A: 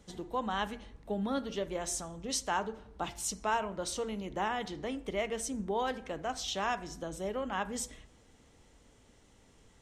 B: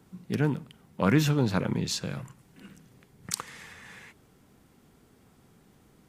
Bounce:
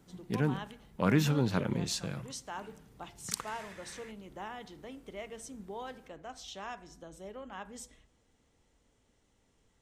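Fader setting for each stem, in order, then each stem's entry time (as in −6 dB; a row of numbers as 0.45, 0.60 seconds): −9.5, −4.0 decibels; 0.00, 0.00 seconds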